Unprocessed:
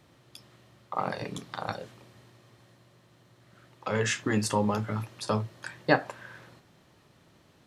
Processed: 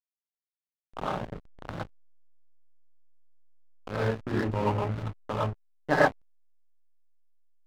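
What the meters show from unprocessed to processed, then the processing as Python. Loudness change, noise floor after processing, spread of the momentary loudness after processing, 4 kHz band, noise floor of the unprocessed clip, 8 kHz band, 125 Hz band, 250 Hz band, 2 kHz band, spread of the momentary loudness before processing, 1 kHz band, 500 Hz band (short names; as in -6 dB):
+0.5 dB, under -85 dBFS, 18 LU, -6.5 dB, -62 dBFS, under -15 dB, +1.0 dB, -2.0 dB, 0.0 dB, 15 LU, +0.5 dB, +1.5 dB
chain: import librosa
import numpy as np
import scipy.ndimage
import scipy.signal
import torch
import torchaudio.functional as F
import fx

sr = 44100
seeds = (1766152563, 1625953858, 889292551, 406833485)

y = fx.filter_lfo_lowpass(x, sr, shape='saw_down', hz=3.1, low_hz=480.0, high_hz=2800.0, q=1.6)
y = fx.rev_gated(y, sr, seeds[0], gate_ms=140, shape='rising', drr_db=-6.5)
y = fx.backlash(y, sr, play_db=-18.0)
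y = y * librosa.db_to_amplitude(-5.0)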